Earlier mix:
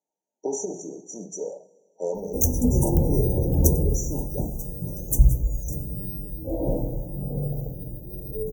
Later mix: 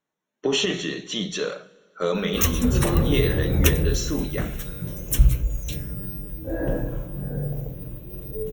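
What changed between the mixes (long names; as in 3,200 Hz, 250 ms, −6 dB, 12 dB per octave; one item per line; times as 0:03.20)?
speech: remove meter weighting curve A
master: remove linear-phase brick-wall band-stop 960–5,700 Hz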